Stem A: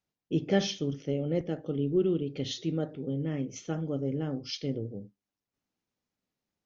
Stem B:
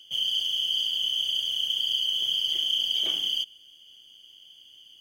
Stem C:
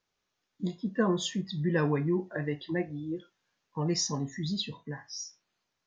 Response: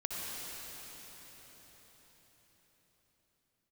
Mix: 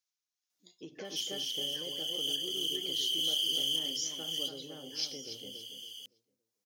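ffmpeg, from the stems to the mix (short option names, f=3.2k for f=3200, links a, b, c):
-filter_complex "[0:a]adelay=500,volume=-4.5dB,asplit=2[a][b];[b]volume=-11.5dB[c];[1:a]acompressor=threshold=-33dB:ratio=6,asoftclip=type=tanh:threshold=-20.5dB,adelay=1050,volume=0.5dB,asplit=2[d][e];[e]volume=-22dB[f];[2:a]tiltshelf=f=970:g=-7.5,volume=-19.5dB,asplit=2[g][h];[h]apad=whole_len=267172[i];[d][i]sidechaincompress=threshold=-53dB:ratio=8:attack=5.5:release=433[j];[a][g]amix=inputs=2:normalize=0,tremolo=f=1.8:d=0.42,acompressor=threshold=-37dB:ratio=10,volume=0dB[k];[3:a]atrim=start_sample=2205[l];[f][l]afir=irnorm=-1:irlink=0[m];[c]aecho=0:1:282|564|846|1128:1|0.29|0.0841|0.0244[n];[j][k][m][n]amix=inputs=4:normalize=0,asoftclip=type=tanh:threshold=-22.5dB,bass=f=250:g=-15,treble=f=4k:g=13"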